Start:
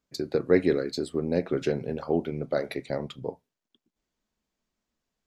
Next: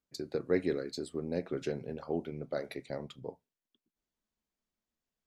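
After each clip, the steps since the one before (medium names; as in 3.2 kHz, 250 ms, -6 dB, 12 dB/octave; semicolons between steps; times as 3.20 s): dynamic bell 8.2 kHz, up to +4 dB, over -53 dBFS, Q 0.83; trim -8.5 dB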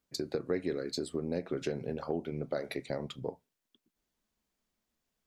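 compression 3:1, threshold -38 dBFS, peak gain reduction 11.5 dB; trim +6.5 dB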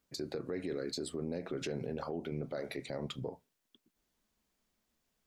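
peak limiter -31.5 dBFS, peak gain reduction 11.5 dB; trim +3 dB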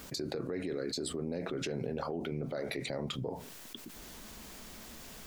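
level flattener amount 70%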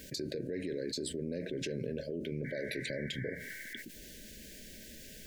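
painted sound noise, 2.44–3.83 s, 700–2300 Hz -43 dBFS; brick-wall FIR band-stop 650–1500 Hz; trim -1 dB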